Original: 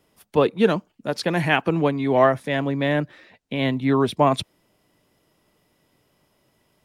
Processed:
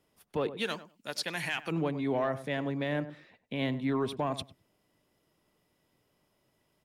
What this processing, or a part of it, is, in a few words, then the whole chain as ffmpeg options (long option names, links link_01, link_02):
soft clipper into limiter: -filter_complex "[0:a]asplit=3[link_01][link_02][link_03];[link_01]afade=type=out:start_time=0.56:duration=0.02[link_04];[link_02]tiltshelf=frequency=1300:gain=-10,afade=type=in:start_time=0.56:duration=0.02,afade=type=out:start_time=1.7:duration=0.02[link_05];[link_03]afade=type=in:start_time=1.7:duration=0.02[link_06];[link_04][link_05][link_06]amix=inputs=3:normalize=0,asoftclip=type=tanh:threshold=-6dB,alimiter=limit=-13.5dB:level=0:latency=1:release=129,asplit=2[link_07][link_08];[link_08]adelay=98,lowpass=frequency=990:poles=1,volume=-11.5dB,asplit=2[link_09][link_10];[link_10]adelay=98,lowpass=frequency=990:poles=1,volume=0.18[link_11];[link_07][link_09][link_11]amix=inputs=3:normalize=0,volume=-8.5dB"